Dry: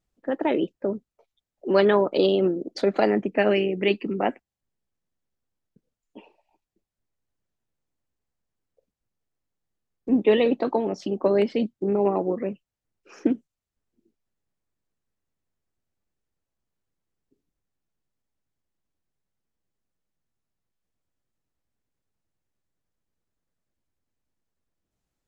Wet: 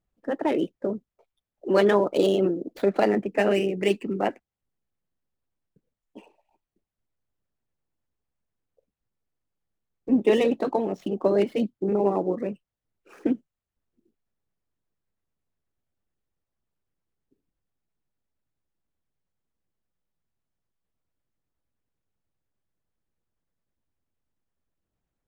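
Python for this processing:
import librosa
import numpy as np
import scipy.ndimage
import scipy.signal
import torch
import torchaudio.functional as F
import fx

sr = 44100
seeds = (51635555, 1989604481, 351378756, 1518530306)

y = scipy.ndimage.median_filter(x, 9, mode='constant')
y = fx.filter_lfo_notch(y, sr, shape='sine', hz=8.8, low_hz=230.0, high_hz=2500.0, q=2.4)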